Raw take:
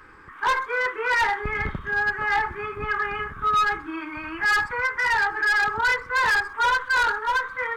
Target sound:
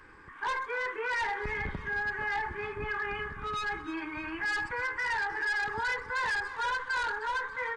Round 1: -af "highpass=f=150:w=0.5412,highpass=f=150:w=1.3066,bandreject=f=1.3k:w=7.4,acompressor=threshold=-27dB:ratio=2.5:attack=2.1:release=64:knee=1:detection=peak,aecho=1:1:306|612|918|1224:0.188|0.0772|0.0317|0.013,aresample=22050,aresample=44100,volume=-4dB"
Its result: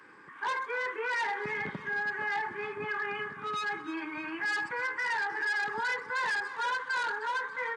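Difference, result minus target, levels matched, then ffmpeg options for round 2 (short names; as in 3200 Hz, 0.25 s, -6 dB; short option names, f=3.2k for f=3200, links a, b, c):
125 Hz band -6.5 dB
-af "bandreject=f=1.3k:w=7.4,acompressor=threshold=-27dB:ratio=2.5:attack=2.1:release=64:knee=1:detection=peak,aecho=1:1:306|612|918|1224:0.188|0.0772|0.0317|0.013,aresample=22050,aresample=44100,volume=-4dB"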